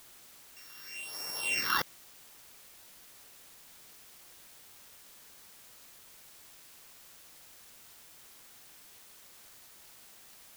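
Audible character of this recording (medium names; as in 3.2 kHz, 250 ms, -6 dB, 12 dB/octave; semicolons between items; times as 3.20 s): a buzz of ramps at a fixed pitch in blocks of 16 samples; phasing stages 6, 1 Hz, lowest notch 640–3000 Hz; a quantiser's noise floor 10-bit, dither triangular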